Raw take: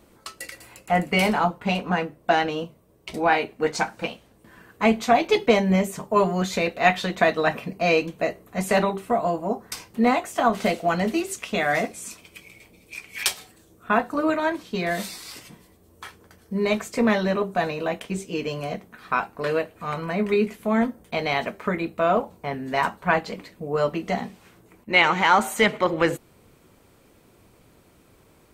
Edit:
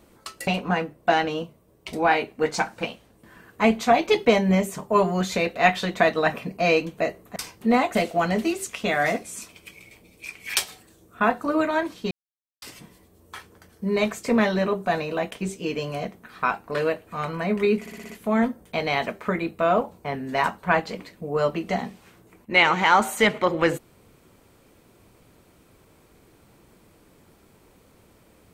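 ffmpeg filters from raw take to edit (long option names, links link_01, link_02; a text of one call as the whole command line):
ffmpeg -i in.wav -filter_complex "[0:a]asplit=11[link_01][link_02][link_03][link_04][link_05][link_06][link_07][link_08][link_09][link_10][link_11];[link_01]atrim=end=0.472[link_12];[link_02]atrim=start=1.678:end=8.572[link_13];[link_03]atrim=start=9.688:end=10.282[link_14];[link_04]atrim=start=10.638:end=14.8,asetpts=PTS-STARTPTS,afade=type=out:start_time=4.158:duration=0.004:curve=hsin[link_15];[link_05]atrim=start=14.8:end=15.31,asetpts=PTS-STARTPTS,volume=0[link_16];[link_06]atrim=start=15.31:end=20.552,asetpts=PTS-STARTPTS,afade=type=in:duration=0.004:curve=hsin[link_17];[link_07]atrim=start=20.488:end=20.552[link_18];[link_08]atrim=start=20.488:end=20.552[link_19];[link_09]atrim=start=20.488:end=20.552[link_20];[link_10]atrim=start=20.488:end=20.552[link_21];[link_11]atrim=start=20.488[link_22];[link_12][link_13]acrossfade=duration=0.004:curve1=hsin:curve2=hsin[link_23];[link_23][link_14]acrossfade=duration=0.004:curve1=hsin:curve2=hsin[link_24];[link_15][link_16][link_17]concat=n=3:v=0:a=1[link_25];[link_24][link_25]acrossfade=duration=0.004:curve1=hsin:curve2=hsin[link_26];[link_26][link_18]acrossfade=duration=0.004:curve1=hsin:curve2=hsin[link_27];[link_27][link_19]acrossfade=duration=0.004:curve1=hsin:curve2=hsin[link_28];[link_28][link_20]acrossfade=duration=0.004:curve1=hsin:curve2=hsin[link_29];[link_29][link_21]acrossfade=duration=0.004:curve1=hsin:curve2=hsin[link_30];[link_30][link_22]acrossfade=duration=0.004:curve1=hsin:curve2=hsin" out.wav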